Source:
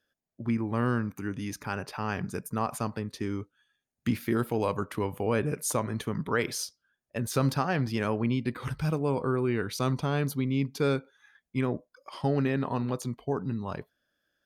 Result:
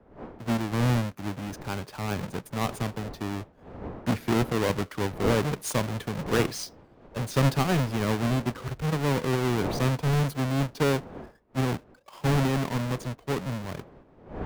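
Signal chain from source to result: square wave that keeps the level; wind noise 530 Hz -39 dBFS; treble shelf 5.1 kHz -5.5 dB; three bands expanded up and down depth 40%; trim -2 dB

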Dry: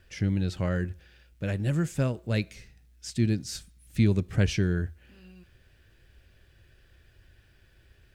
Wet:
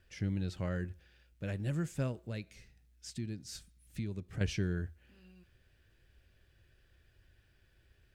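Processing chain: 2.23–4.41 s: compression 2.5:1, threshold -31 dBFS, peak gain reduction 9.5 dB; trim -8 dB

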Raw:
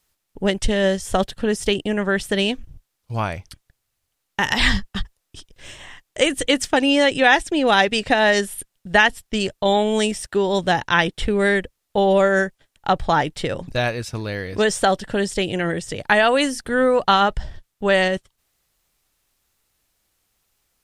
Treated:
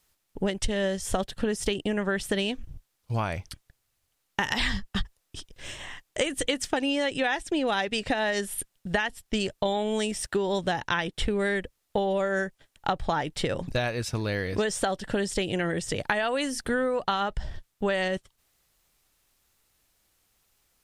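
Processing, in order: compression 10:1, threshold -23 dBFS, peak gain reduction 14 dB

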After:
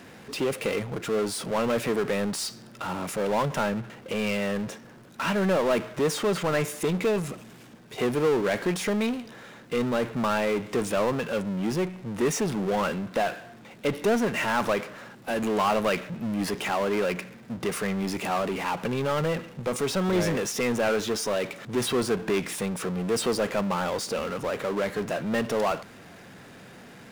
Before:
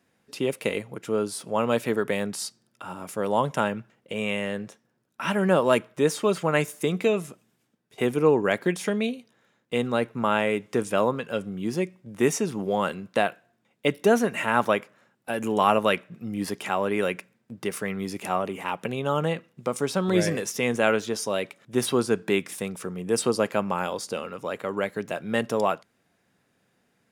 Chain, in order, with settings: treble shelf 6.3 kHz -9.5 dB; power-law waveshaper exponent 0.5; trim -8.5 dB

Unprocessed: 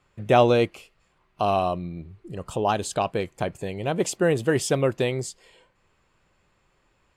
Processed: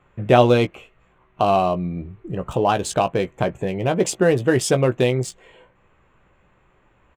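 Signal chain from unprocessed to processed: local Wiener filter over 9 samples; in parallel at 0 dB: compression, threshold -30 dBFS, peak gain reduction 16.5 dB; on the sum: doubling 16 ms -8.5 dB; trim +2 dB

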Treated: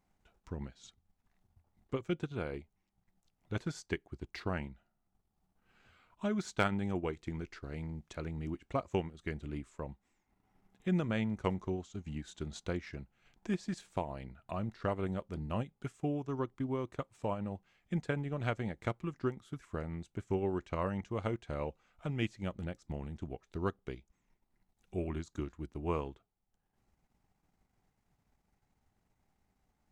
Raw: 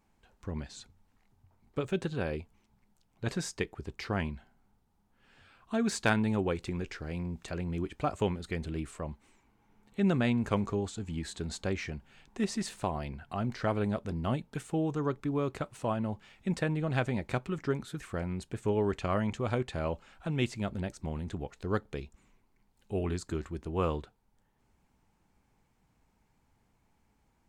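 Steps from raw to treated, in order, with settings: transient shaper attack +3 dB, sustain -8 dB; speed mistake 48 kHz file played as 44.1 kHz; trim -5.5 dB

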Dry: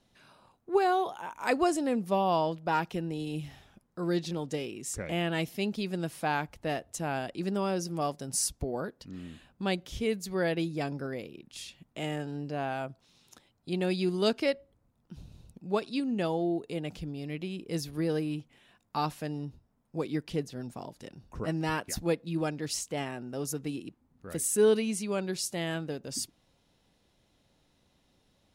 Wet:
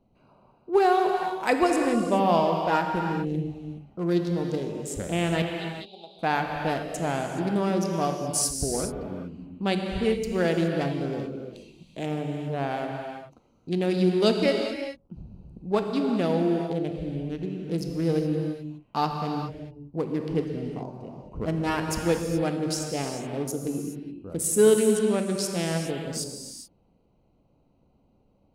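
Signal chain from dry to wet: local Wiener filter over 25 samples; 5.42–6.19 s: two resonant band-passes 1.7 kHz, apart 2.2 oct; gated-style reverb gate 450 ms flat, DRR 2.5 dB; trim +4.5 dB

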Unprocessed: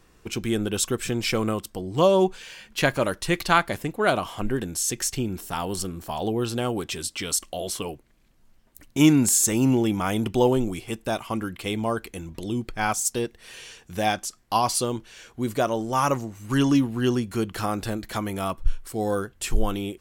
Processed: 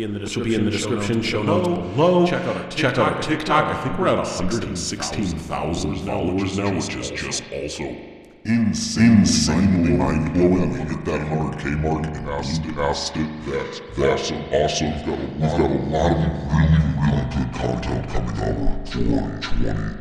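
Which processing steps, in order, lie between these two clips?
pitch bend over the whole clip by -11 st starting unshifted; gate with hold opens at -50 dBFS; peaking EQ 14 kHz -5.5 dB 1.1 oct; in parallel at -7 dB: hard clipper -19 dBFS, distortion -12 dB; on the sum: distance through air 54 m; on a send: reverse echo 513 ms -5.5 dB; on the sum: spring tank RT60 1.8 s, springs 39 ms, chirp 70 ms, DRR 6.5 dB; trim +1.5 dB

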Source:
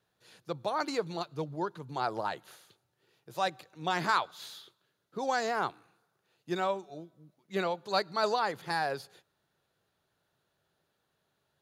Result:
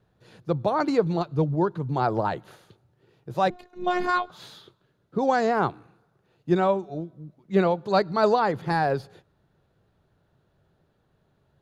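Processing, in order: tilt EQ -3.5 dB/octave; 3.50–4.30 s: robot voice 358 Hz; trim +6.5 dB

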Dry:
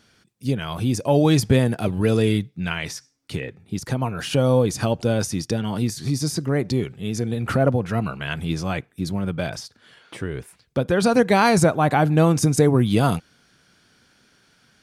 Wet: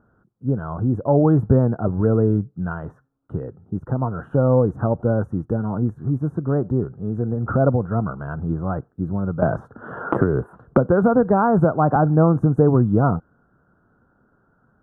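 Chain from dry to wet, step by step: elliptic low-pass 1.4 kHz, stop band 40 dB; bass shelf 82 Hz +6.5 dB; 9.42–11.96 s: three bands compressed up and down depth 100%; trim +1 dB

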